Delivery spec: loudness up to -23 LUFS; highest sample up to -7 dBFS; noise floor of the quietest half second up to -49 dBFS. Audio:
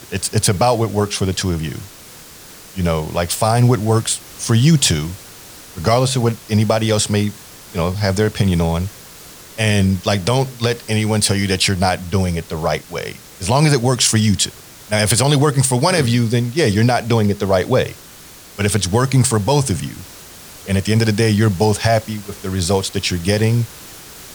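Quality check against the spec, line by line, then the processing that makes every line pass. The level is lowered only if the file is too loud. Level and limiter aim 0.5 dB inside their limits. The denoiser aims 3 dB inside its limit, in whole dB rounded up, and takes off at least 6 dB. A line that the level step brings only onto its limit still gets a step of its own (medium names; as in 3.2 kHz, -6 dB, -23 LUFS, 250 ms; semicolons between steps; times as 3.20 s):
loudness -17.0 LUFS: fail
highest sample -2.5 dBFS: fail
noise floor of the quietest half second -40 dBFS: fail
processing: noise reduction 6 dB, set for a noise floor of -40 dBFS; trim -6.5 dB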